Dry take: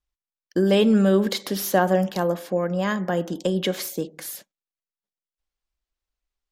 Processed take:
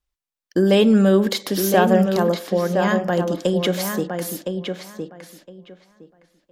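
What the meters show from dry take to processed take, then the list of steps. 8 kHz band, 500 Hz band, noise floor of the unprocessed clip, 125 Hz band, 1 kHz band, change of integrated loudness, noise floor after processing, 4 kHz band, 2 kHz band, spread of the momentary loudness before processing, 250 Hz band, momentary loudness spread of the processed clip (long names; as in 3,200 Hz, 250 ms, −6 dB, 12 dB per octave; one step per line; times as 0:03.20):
+3.0 dB, +4.0 dB, below −85 dBFS, +4.0 dB, +4.0 dB, +3.5 dB, below −85 dBFS, +3.5 dB, +4.0 dB, 13 LU, +4.0 dB, 14 LU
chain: feedback echo with a low-pass in the loop 1,013 ms, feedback 17%, low-pass 3,700 Hz, level −6 dB
level +3 dB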